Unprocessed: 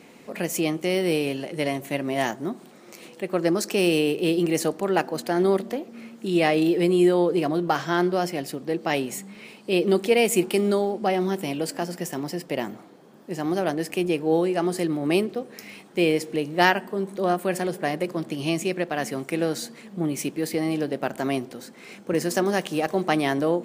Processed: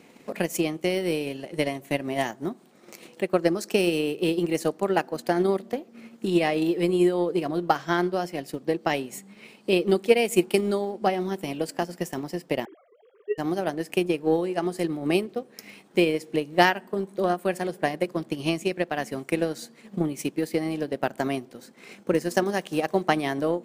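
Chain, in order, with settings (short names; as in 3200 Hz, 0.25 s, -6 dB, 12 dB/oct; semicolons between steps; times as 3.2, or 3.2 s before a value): 12.65–13.38 sine-wave speech; transient shaper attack +8 dB, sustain -5 dB; gain -4 dB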